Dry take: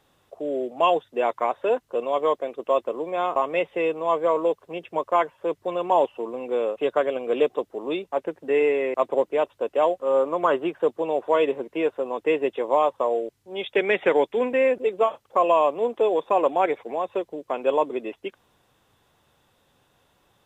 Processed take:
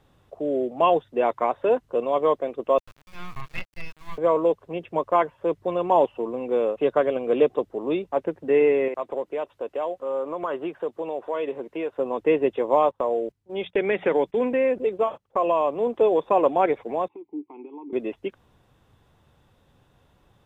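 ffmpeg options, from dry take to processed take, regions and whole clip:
ffmpeg -i in.wav -filter_complex "[0:a]asettb=1/sr,asplit=3[link_01][link_02][link_03];[link_01]atrim=end=2.784[link_04];[link_02]atrim=start=2.78:end=4.18,asetpts=PTS-STARTPTS,afade=type=in:duration=0.004:curve=qsin,afade=type=out:start_time=1.396:duration=0.004:curve=qsin,highpass=frequency=1400:width=0.5412,highpass=frequency=1400:width=1.3066,acrusher=bits=5:dc=4:mix=0:aa=0.000001[link_05];[link_03]atrim=start=4.176[link_06];[link_04][link_05]acrossfade=duration=0.004:curve1=hsin:curve2=qsin[link_07];[link_07][link_06]acrossfade=duration=0.004:curve1=qsin:curve2=hsin,asettb=1/sr,asplit=3[link_08][link_09][link_10];[link_08]atrim=end=8.884[link_11];[link_09]atrim=start=8.88:end=11.99,asetpts=PTS-STARTPTS,afade=type=in:duration=0.004:curve=qsin,afade=type=out:start_time=3.106:duration=0.004:curve=qsin,lowshelf=frequency=220:gain=-11,acompressor=threshold=-30dB:ratio=2:attack=3.2:release=140:knee=1:detection=peak[link_12];[link_10]atrim=start=11.986[link_13];[link_11][link_12]acrossfade=duration=0.004:curve1=hsin:curve2=qsin[link_14];[link_14][link_13]acrossfade=duration=0.004:curve1=qsin:curve2=hsin,asettb=1/sr,asplit=3[link_15][link_16][link_17];[link_15]atrim=end=12.914[link_18];[link_16]atrim=start=12.91:end=15.87,asetpts=PTS-STARTPTS,afade=type=in:duration=0.004:curve=qsin,afade=type=out:start_time=2.956:duration=0.004:curve=qsin,bandreject=frequency=60:width_type=h:width=6,bandreject=frequency=120:width_type=h:width=6,bandreject=frequency=180:width_type=h:width=6,agate=range=-14dB:threshold=-43dB:ratio=16:release=100:detection=peak,acompressor=threshold=-24dB:ratio=1.5:attack=3.2:release=140:knee=1:detection=peak[link_19];[link_17]atrim=start=15.866[link_20];[link_18][link_19]acrossfade=duration=0.004:curve1=hsin:curve2=qsin[link_21];[link_21][link_20]acrossfade=duration=0.004:curve1=qsin:curve2=hsin,asettb=1/sr,asplit=3[link_22][link_23][link_24];[link_22]atrim=end=17.084[link_25];[link_23]atrim=start=17.08:end=17.93,asetpts=PTS-STARTPTS,afade=type=in:duration=0.004:curve=qsin,afade=type=out:start_time=0.846:duration=0.004:curve=qsin,equalizer=frequency=380:width_type=o:width=0.36:gain=10,acompressor=threshold=-24dB:ratio=12:attack=3.2:release=140:knee=1:detection=peak,asplit=3[link_26][link_27][link_28];[link_26]bandpass=frequency=300:width_type=q:width=8,volume=0dB[link_29];[link_27]bandpass=frequency=870:width_type=q:width=8,volume=-6dB[link_30];[link_28]bandpass=frequency=2240:width_type=q:width=8,volume=-9dB[link_31];[link_29][link_30][link_31]amix=inputs=3:normalize=0[link_32];[link_24]atrim=start=17.926[link_33];[link_25][link_32]acrossfade=duration=0.004:curve1=hsin:curve2=qsin[link_34];[link_34][link_33]acrossfade=duration=0.004:curve1=qsin:curve2=hsin,highshelf=frequency=4000:gain=-6.5,acrossover=split=3800[link_35][link_36];[link_36]acompressor=threshold=-54dB:ratio=4:attack=1:release=60[link_37];[link_35][link_37]amix=inputs=2:normalize=0,lowshelf=frequency=200:gain=12" out.wav

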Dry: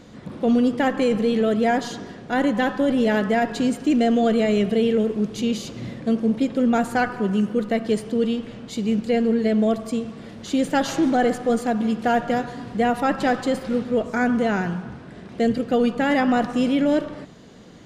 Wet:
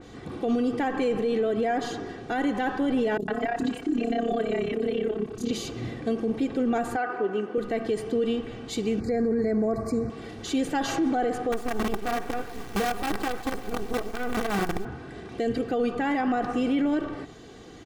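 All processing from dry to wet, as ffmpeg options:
ffmpeg -i in.wav -filter_complex "[0:a]asettb=1/sr,asplit=3[link_01][link_02][link_03];[link_01]atrim=end=3.174[link_04];[link_02]atrim=start=3.17:end=5.51,asetpts=PTS-STARTPTS,afade=type=in:duration=0.004:curve=qsin,afade=type=out:start_time=2.336:duration=0.004:curve=qsin,bandreject=frequency=520:width=9,tremolo=f=33:d=0.824,acrossover=split=520|5400[link_05][link_06][link_07];[link_07]adelay=30[link_08];[link_06]adelay=110[link_09];[link_05][link_09][link_08]amix=inputs=3:normalize=0,atrim=end_sample=103194[link_10];[link_03]atrim=start=5.506[link_11];[link_04][link_10]acrossfade=duration=0.004:curve1=hsin:curve2=qsin[link_12];[link_12][link_11]acrossfade=duration=0.004:curve1=qsin:curve2=hsin,asettb=1/sr,asplit=3[link_13][link_14][link_15];[link_13]atrim=end=6.964[link_16];[link_14]atrim=start=6.96:end=7.58,asetpts=PTS-STARTPTS,afade=type=in:duration=0.004:curve=qsin,afade=type=out:start_time=0.616:duration=0.004:curve=qsin,highpass=340,aemphasis=mode=reproduction:type=75fm[link_17];[link_15]atrim=start=7.576[link_18];[link_16][link_17]acrossfade=duration=0.004:curve1=hsin:curve2=qsin[link_19];[link_19][link_18]acrossfade=duration=0.004:curve1=qsin:curve2=hsin,asettb=1/sr,asplit=3[link_20][link_21][link_22];[link_20]atrim=end=9.004[link_23];[link_21]atrim=start=9:end=10.1,asetpts=PTS-STARTPTS,afade=type=in:duration=0.004:curve=qsin,afade=type=out:start_time=1.096:duration=0.004:curve=qsin,asuperstop=centerf=3100:order=8:qfactor=1.7,equalizer=frequency=95:width=0.62:gain=10[link_24];[link_22]atrim=start=10.096[link_25];[link_23][link_24]acrossfade=duration=0.004:curve1=hsin:curve2=qsin[link_26];[link_26][link_25]acrossfade=duration=0.004:curve1=qsin:curve2=hsin,asettb=1/sr,asplit=3[link_27][link_28][link_29];[link_27]atrim=end=11.524[link_30];[link_28]atrim=start=11.52:end=14.85,asetpts=PTS-STARTPTS,afade=type=in:duration=0.004:curve=qsin,afade=type=out:start_time=3.326:duration=0.004:curve=qsin,equalizer=frequency=200:width=6:gain=13.5,flanger=delay=2:depth=9.1:regen=29:speed=1.1:shape=sinusoidal,acrusher=bits=4:dc=4:mix=0:aa=0.000001[link_31];[link_29]atrim=start=14.846[link_32];[link_30][link_31]acrossfade=duration=0.004:curve1=hsin:curve2=qsin[link_33];[link_33][link_32]acrossfade=duration=0.004:curve1=qsin:curve2=hsin,aecho=1:1:2.6:0.57,alimiter=limit=-18dB:level=0:latency=1:release=54,adynamicequalizer=threshold=0.00501:dfrequency=2900:dqfactor=0.7:tfrequency=2900:tqfactor=0.7:attack=5:release=100:ratio=0.375:range=3.5:mode=cutabove:tftype=highshelf" out.wav

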